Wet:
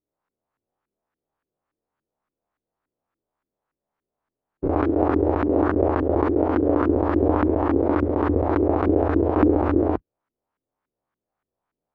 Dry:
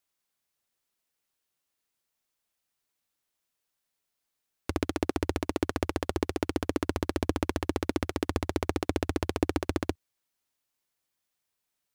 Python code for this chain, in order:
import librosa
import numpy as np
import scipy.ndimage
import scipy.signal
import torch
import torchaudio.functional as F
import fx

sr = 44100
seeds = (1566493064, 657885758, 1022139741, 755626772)

y = fx.spec_dilate(x, sr, span_ms=120)
y = fx.filter_lfo_lowpass(y, sr, shape='saw_up', hz=3.5, low_hz=290.0, high_hz=1500.0, q=1.9)
y = y * librosa.db_to_amplitude(2.0)